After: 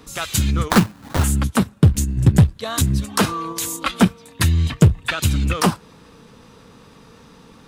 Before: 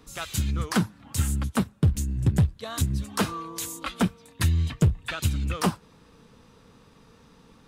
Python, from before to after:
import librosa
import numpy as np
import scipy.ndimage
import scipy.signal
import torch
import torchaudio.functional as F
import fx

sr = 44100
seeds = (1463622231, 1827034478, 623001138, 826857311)

p1 = fx.low_shelf(x, sr, hz=71.0, db=-6.0)
p2 = fx.level_steps(p1, sr, step_db=10)
p3 = p1 + F.gain(torch.from_numpy(p2), 2.5).numpy()
p4 = fx.sample_hold(p3, sr, seeds[0], rate_hz=2700.0, jitter_pct=20, at=(0.7, 1.24))
y = F.gain(torch.from_numpy(p4), 4.0).numpy()